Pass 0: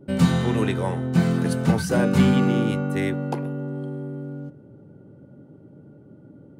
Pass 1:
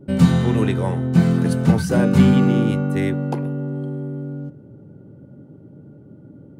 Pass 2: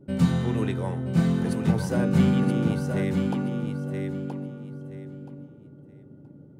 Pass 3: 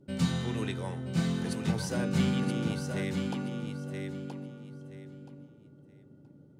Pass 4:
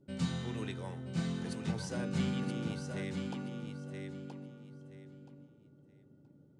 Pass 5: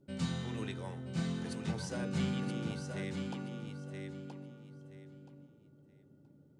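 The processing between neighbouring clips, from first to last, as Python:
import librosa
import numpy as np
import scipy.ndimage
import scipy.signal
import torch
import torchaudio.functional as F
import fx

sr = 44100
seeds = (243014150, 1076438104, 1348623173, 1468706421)

y1 = fx.low_shelf(x, sr, hz=330.0, db=6.0)
y2 = fx.echo_feedback(y1, sr, ms=975, feedback_pct=21, wet_db=-6.0)
y2 = y2 * librosa.db_to_amplitude(-7.5)
y3 = fx.peak_eq(y2, sr, hz=5100.0, db=10.5, octaves=2.7)
y3 = y3 * librosa.db_to_amplitude(-7.5)
y4 = scipy.signal.sosfilt(scipy.signal.butter(4, 9600.0, 'lowpass', fs=sr, output='sos'), y3)
y4 = y4 * librosa.db_to_amplitude(-6.0)
y5 = fx.hum_notches(y4, sr, base_hz=60, count=8)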